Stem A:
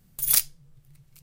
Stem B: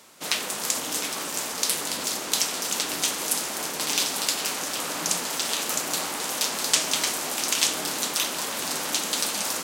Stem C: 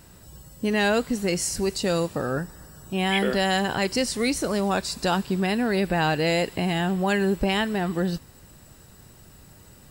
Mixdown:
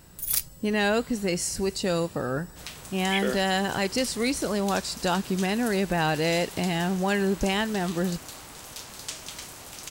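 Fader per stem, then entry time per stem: -5.5 dB, -14.5 dB, -2.0 dB; 0.00 s, 2.35 s, 0.00 s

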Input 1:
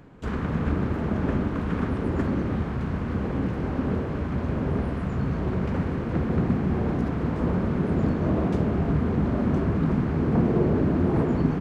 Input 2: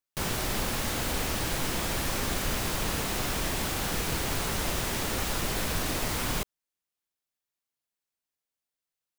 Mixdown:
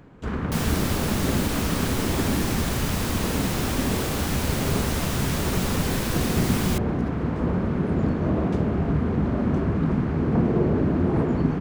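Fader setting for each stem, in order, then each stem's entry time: +0.5 dB, +1.0 dB; 0.00 s, 0.35 s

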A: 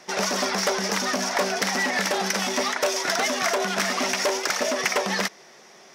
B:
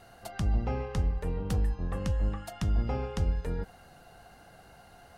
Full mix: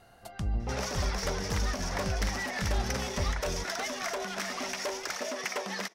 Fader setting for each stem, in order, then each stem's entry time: -10.5 dB, -3.5 dB; 0.60 s, 0.00 s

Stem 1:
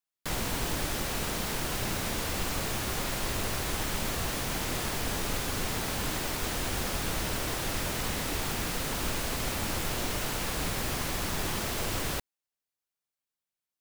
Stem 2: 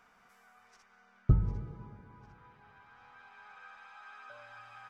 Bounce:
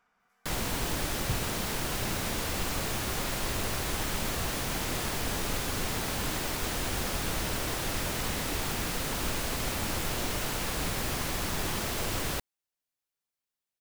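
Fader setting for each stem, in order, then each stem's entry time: 0.0 dB, -8.5 dB; 0.20 s, 0.00 s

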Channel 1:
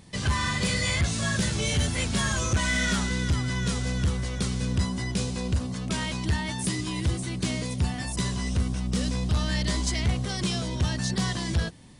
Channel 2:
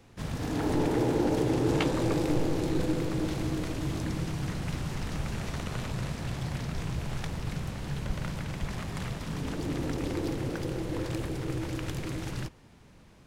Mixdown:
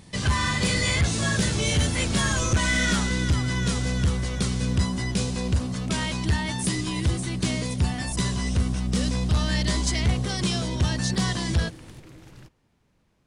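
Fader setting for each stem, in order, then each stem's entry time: +2.5 dB, -12.0 dB; 0.00 s, 0.00 s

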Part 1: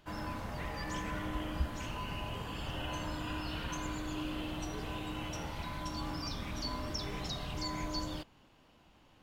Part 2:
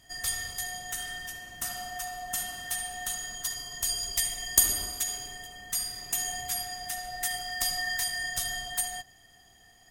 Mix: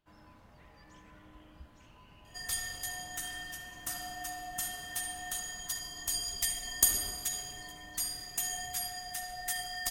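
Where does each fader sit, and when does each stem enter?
-18.0 dB, -4.0 dB; 0.00 s, 2.25 s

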